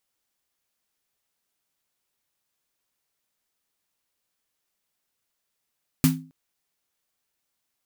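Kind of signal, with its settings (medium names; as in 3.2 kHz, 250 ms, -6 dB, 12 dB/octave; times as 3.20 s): snare drum length 0.27 s, tones 160 Hz, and 260 Hz, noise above 790 Hz, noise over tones -6.5 dB, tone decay 0.39 s, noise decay 0.21 s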